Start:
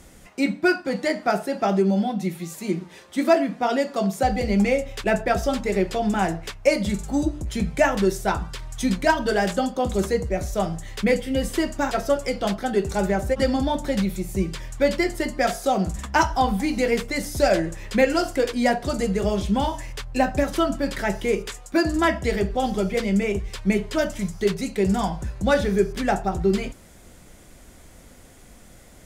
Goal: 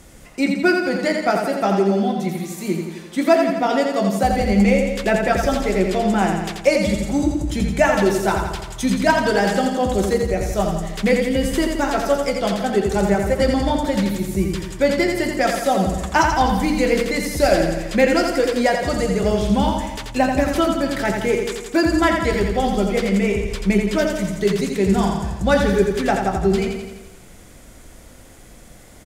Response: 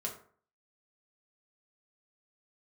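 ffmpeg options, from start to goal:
-af "aecho=1:1:85|170|255|340|425|510|595|680:0.562|0.332|0.196|0.115|0.0681|0.0402|0.0237|0.014,volume=1.33"

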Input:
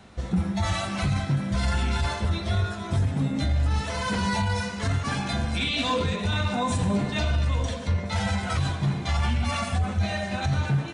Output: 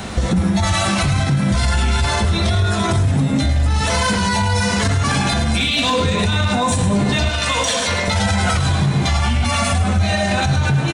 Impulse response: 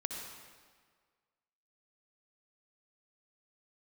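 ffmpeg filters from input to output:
-filter_complex "[0:a]asettb=1/sr,asplit=3[s0][s1][s2];[s0]atrim=end=7.294[s3];[s1]atrim=start=7.29:end=8.08,asetpts=PTS-STARTPTS,afade=t=in:d=0.004:c=qsin,afade=t=out:st=0.786:d=0.004:c=qsin,highpass=f=1100:p=1[s4];[s2]atrim=start=8.076[s5];[s3][s4]acrossfade=d=0.004:c1=hsin:c2=qsin[s6];[s6][s5]acrossfade=d=0.004:c1=qsin:c2=hsin,acompressor=threshold=0.0224:ratio=6,asplit=2[s7][s8];[s8]asoftclip=type=tanh:threshold=0.0168,volume=0.251[s9];[s7][s9]amix=inputs=2:normalize=0,crystalizer=i=1:c=0,asplit=2[s10][s11];[s11]aecho=0:1:104:0.299[s12];[s10][s12]amix=inputs=2:normalize=0,alimiter=level_in=23.7:limit=0.891:release=50:level=0:latency=1,volume=0.398"

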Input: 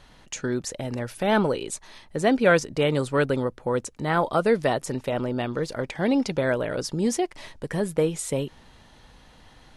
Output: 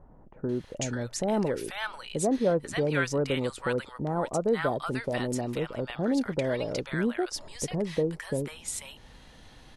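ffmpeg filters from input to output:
-filter_complex "[0:a]asplit=2[s0][s1];[s1]acompressor=threshold=0.0251:ratio=6,volume=1.26[s2];[s0][s2]amix=inputs=2:normalize=0,acrossover=split=990[s3][s4];[s4]adelay=490[s5];[s3][s5]amix=inputs=2:normalize=0,volume=0.473"

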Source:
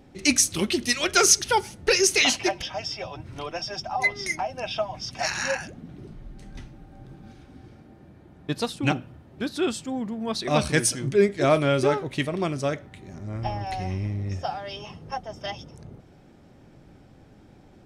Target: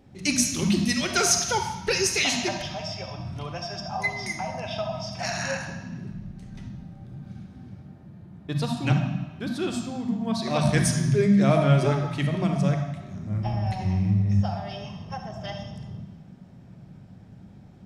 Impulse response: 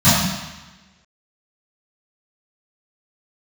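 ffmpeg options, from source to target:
-filter_complex "[0:a]asplit=2[s0][s1];[1:a]atrim=start_sample=2205,adelay=29[s2];[s1][s2]afir=irnorm=-1:irlink=0,volume=0.0398[s3];[s0][s3]amix=inputs=2:normalize=0,volume=0.596"

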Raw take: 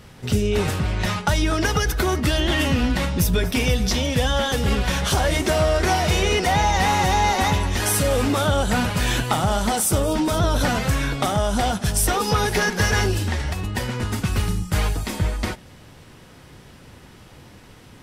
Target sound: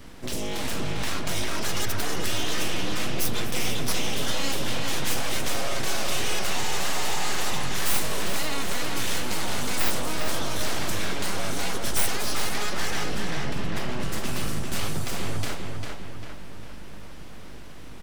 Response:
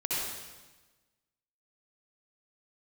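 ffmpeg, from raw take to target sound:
-filter_complex "[0:a]asettb=1/sr,asplit=3[s0][s1][s2];[s0]atrim=end=8.374[s3];[s1]atrim=start=8.37:end=8.82,asetpts=PTS-STARTPTS,afade=t=in:d=0.004:c=qsin,afade=t=out:st=0.446:d=0.004:c=qsin,highpass=f=290:w=0.5412,highpass=f=290:w=1.3066[s4];[s2]atrim=start=8.816[s5];[s3][s4]acrossfade=d=0.004:c1=hsin:c2=qsin[s6];[s6][s5]acrossfade=d=0.004:c1=qsin:c2=hsin,asettb=1/sr,asplit=3[s7][s8][s9];[s7]atrim=end=12.544[s10];[s8]atrim=start=12.54:end=14.03,asetpts=PTS-STARTPTS,afade=t=in:d=0.004:c=qsin,afade=t=out:st=1.486:d=0.004:c=qsin,highshelf=f=5200:g=-11[s11];[s9]atrim=start=14.026[s12];[s10][s11]acrossfade=d=0.004:c1=hsin:c2=qsin[s13];[s13][s12]acrossfade=d=0.004:c1=qsin:c2=hsin,acrossover=split=2600[s14][s15];[s14]alimiter=limit=0.0841:level=0:latency=1[s16];[s16][s15]amix=inputs=2:normalize=0,aeval=exprs='val(0)+0.00562*(sin(2*PI*50*n/s)+sin(2*PI*2*50*n/s)/2+sin(2*PI*3*50*n/s)/3+sin(2*PI*4*50*n/s)/4+sin(2*PI*5*50*n/s)/5)':c=same,aeval=exprs='abs(val(0))':c=same,asplit=2[s17][s18];[s18]adelay=399,lowpass=f=4300:p=1,volume=0.668,asplit=2[s19][s20];[s20]adelay=399,lowpass=f=4300:p=1,volume=0.53,asplit=2[s21][s22];[s22]adelay=399,lowpass=f=4300:p=1,volume=0.53,asplit=2[s23][s24];[s24]adelay=399,lowpass=f=4300:p=1,volume=0.53,asplit=2[s25][s26];[s26]adelay=399,lowpass=f=4300:p=1,volume=0.53,asplit=2[s27][s28];[s28]adelay=399,lowpass=f=4300:p=1,volume=0.53,asplit=2[s29][s30];[s30]adelay=399,lowpass=f=4300:p=1,volume=0.53[s31];[s17][s19][s21][s23][s25][s27][s29][s31]amix=inputs=8:normalize=0"

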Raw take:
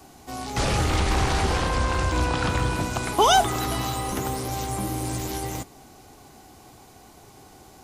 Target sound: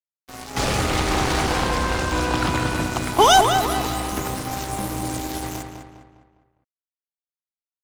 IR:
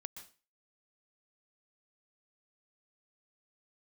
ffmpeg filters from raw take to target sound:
-filter_complex "[0:a]acrossover=split=160|3900[s0][s1][s2];[s0]alimiter=level_in=1.26:limit=0.0631:level=0:latency=1,volume=0.794[s3];[s3][s1][s2]amix=inputs=3:normalize=0,aeval=exprs='sgn(val(0))*max(abs(val(0))-0.0224,0)':c=same,asplit=2[s4][s5];[s5]adelay=203,lowpass=f=3300:p=1,volume=0.501,asplit=2[s6][s7];[s7]adelay=203,lowpass=f=3300:p=1,volume=0.44,asplit=2[s8][s9];[s9]adelay=203,lowpass=f=3300:p=1,volume=0.44,asplit=2[s10][s11];[s11]adelay=203,lowpass=f=3300:p=1,volume=0.44,asplit=2[s12][s13];[s13]adelay=203,lowpass=f=3300:p=1,volume=0.44[s14];[s4][s6][s8][s10][s12][s14]amix=inputs=6:normalize=0,volume=1.78"

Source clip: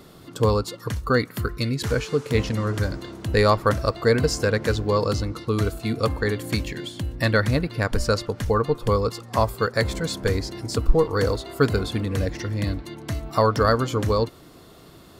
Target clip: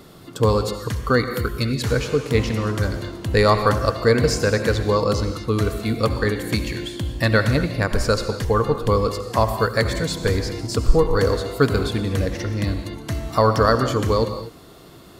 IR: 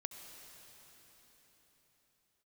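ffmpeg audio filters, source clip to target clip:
-filter_complex "[1:a]atrim=start_sample=2205,afade=t=out:st=0.3:d=0.01,atrim=end_sample=13671[s0];[0:a][s0]afir=irnorm=-1:irlink=0,volume=2"

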